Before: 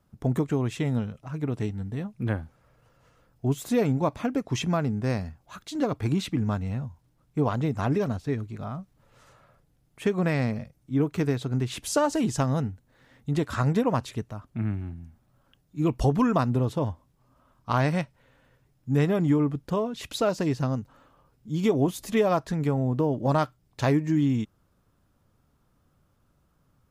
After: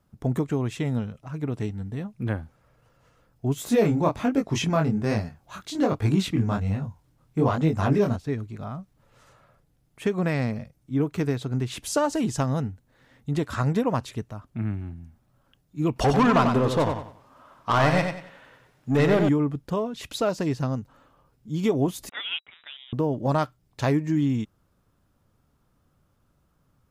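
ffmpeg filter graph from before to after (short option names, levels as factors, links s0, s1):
-filter_complex "[0:a]asettb=1/sr,asplit=3[s0][s1][s2];[s0]atrim=end=3.564[s3];[s1]atrim=start=3.56:end=8.16,asetpts=PTS-STARTPTS,afade=t=in:d=0.004:c=qsin,afade=t=out:st=4.596:d=0.004:c=qsin,acontrast=63,flanger=delay=18.5:depth=7.2:speed=1.2[s4];[s2]atrim=start=8.156[s5];[s3][s4]acrossfade=d=0.004:c1=hsin:c2=qsin[s6];[s6][s5]acrossfade=d=0.004:c1=qsin:c2=hsin,asettb=1/sr,asplit=3[s7][s8][s9];[s7]atrim=end=15.964[s10];[s8]atrim=start=15.96:end=19.29,asetpts=PTS-STARTPTS,afade=t=in:d=0.004:c=qsin,afade=t=out:st=3.326:d=0.004:c=qsin,asplit=2[s11][s12];[s12]highpass=f=720:p=1,volume=10,asoftclip=type=tanh:threshold=0.251[s13];[s11][s13]amix=inputs=2:normalize=0,lowpass=f=3200:p=1,volume=0.501,aecho=1:1:93|186|279|372:0.501|0.155|0.0482|0.0149,atrim=end_sample=146853[s14];[s9]atrim=start=19.286[s15];[s10][s14]acrossfade=d=0.004:c1=hsin:c2=qsin[s16];[s16][s15]acrossfade=d=0.004:c1=qsin:c2=hsin,asettb=1/sr,asplit=3[s17][s18][s19];[s17]atrim=end=22.094[s20];[s18]atrim=start=22.09:end=22.93,asetpts=PTS-STARTPTS,afade=t=in:d=0.004:c=qsin,afade=t=out:st=0.836:d=0.004:c=qsin,highpass=1000,aeval=exprs='sgn(val(0))*max(abs(val(0))-0.00422,0)':c=same,lowpass=f=3300:t=q:w=0.5098,lowpass=f=3300:t=q:w=0.6013,lowpass=f=3300:t=q:w=0.9,lowpass=f=3300:t=q:w=2.563,afreqshift=-3900[s21];[s19]atrim=start=22.926[s22];[s20][s21]acrossfade=d=0.004:c1=hsin:c2=qsin[s23];[s23][s22]acrossfade=d=0.004:c1=qsin:c2=hsin"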